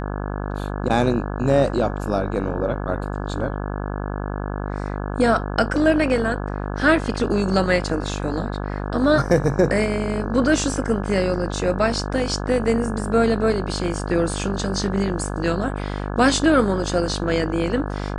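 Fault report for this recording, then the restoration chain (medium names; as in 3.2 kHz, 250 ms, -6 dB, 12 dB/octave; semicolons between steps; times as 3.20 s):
buzz 50 Hz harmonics 34 -27 dBFS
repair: de-hum 50 Hz, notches 34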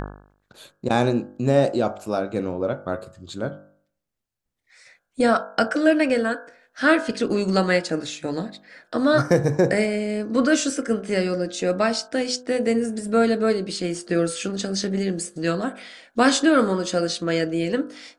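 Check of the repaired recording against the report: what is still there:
nothing left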